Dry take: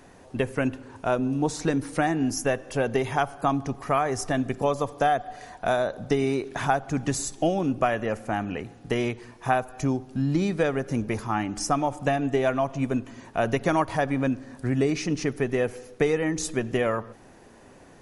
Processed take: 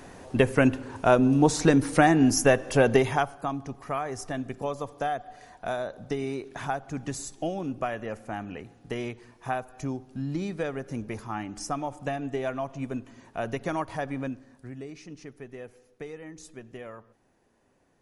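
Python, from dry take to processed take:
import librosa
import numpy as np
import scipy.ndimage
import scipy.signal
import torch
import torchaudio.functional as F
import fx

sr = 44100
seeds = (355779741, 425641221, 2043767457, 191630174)

y = fx.gain(x, sr, db=fx.line((2.94, 5.0), (3.47, -7.0), (14.2, -7.0), (14.8, -17.0)))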